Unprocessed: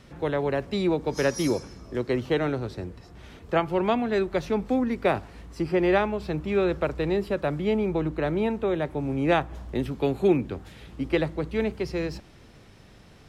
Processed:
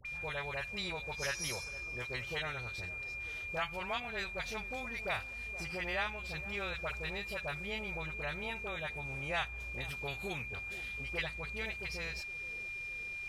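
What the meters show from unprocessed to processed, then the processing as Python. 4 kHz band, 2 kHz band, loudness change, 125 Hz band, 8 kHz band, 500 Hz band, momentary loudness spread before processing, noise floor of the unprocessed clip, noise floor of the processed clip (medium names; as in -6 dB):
-2.5 dB, -1.5 dB, -11.5 dB, -14.0 dB, no reading, -18.5 dB, 9 LU, -51 dBFS, -44 dBFS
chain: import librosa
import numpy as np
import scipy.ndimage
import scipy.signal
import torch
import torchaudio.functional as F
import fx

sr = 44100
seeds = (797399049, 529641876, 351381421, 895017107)

p1 = fx.tone_stack(x, sr, knobs='10-0-10')
p2 = p1 + 10.0 ** (-43.0 / 20.0) * np.sin(2.0 * np.pi * 2400.0 * np.arange(len(p1)) / sr)
p3 = fx.dispersion(p2, sr, late='highs', ms=56.0, hz=970.0)
p4 = p3 + fx.echo_banded(p3, sr, ms=470, feedback_pct=74, hz=340.0, wet_db=-16.0, dry=0)
y = fx.band_squash(p4, sr, depth_pct=40)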